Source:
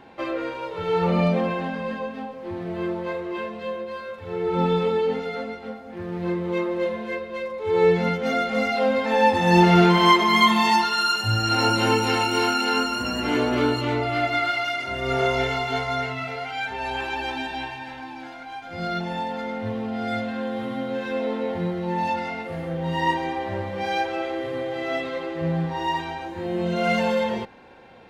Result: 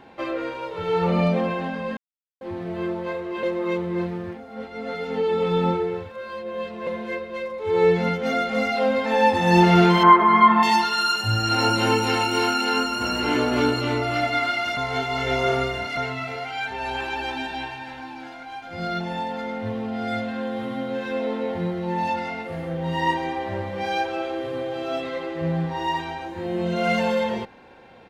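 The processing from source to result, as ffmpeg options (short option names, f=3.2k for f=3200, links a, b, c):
-filter_complex "[0:a]asettb=1/sr,asplit=3[a][b][c];[a]atrim=end=10.034[d];[b]atrim=start=10.03:end=10.63,asetpts=PTS-STARTPTS,afade=t=in:d=0.004:c=qsin,afade=t=out:st=0.596:d=0.004:c=qsin,lowpass=f=1.4k:t=q:w=2.2[e];[c]atrim=start=10.626[f];[d][e]acrossfade=d=0.004:c1=hsin:c2=qsin[g];[g][f]acrossfade=d=0.004:c1=qsin:c2=hsin,asplit=2[h][i];[i]afade=t=in:st=12.46:d=0.01,afade=t=out:st=13.14:d=0.01,aecho=0:1:550|1100|1650|2200|2750|3300|3850|4400|4950|5500|6050:0.446684|0.312679|0.218875|0.153212|0.107249|0.0750741|0.0525519|0.0367863|0.0257504|0.0180253|0.0126177[j];[h][j]amix=inputs=2:normalize=0,asettb=1/sr,asplit=3[k][l][m];[k]atrim=end=23.884[n];[l]atrim=start=23.88:end=25.03,asetpts=PTS-STARTPTS,afade=t=in:d=0.004:c=qsin,afade=t=out:st=1.146:d=0.004:c=qsin,bandreject=f=2k:w=12[o];[m]atrim=start=25.026[p];[n][o]acrossfade=d=0.004:c1=hsin:c2=qsin[q];[q][p]acrossfade=d=0.004:c1=qsin:c2=hsin,asplit=7[r][s][t][u][v][w][x];[r]atrim=end=1.97,asetpts=PTS-STARTPTS,afade=t=out:st=1.966:d=0.004:c=hsin[y];[s]atrim=start=1.97:end=2.41,asetpts=PTS-STARTPTS,volume=0[z];[t]atrim=start=2.41:end=3.432,asetpts=PTS-STARTPTS,afade=t=in:d=0.004:c=hsin[aa];[u]atrim=start=3.428:end=6.872,asetpts=PTS-STARTPTS,areverse[ab];[v]atrim=start=6.868:end=14.772[ac];[w]atrim=start=14.768:end=15.972,asetpts=PTS-STARTPTS,areverse[ad];[x]atrim=start=15.968[ae];[y][z][aa]concat=n=3:v=0:a=1[af];[af][ab]acrossfade=d=0.004:c1=hsin:c2=hsin[ag];[ag][ac]acrossfade=d=0.004:c1=hsin:c2=hsin[ah];[ah][ad]acrossfade=d=0.004:c1=hsin:c2=hsin[ai];[ai][ae]acrossfade=d=0.004:c1=hsin:c2=hsin"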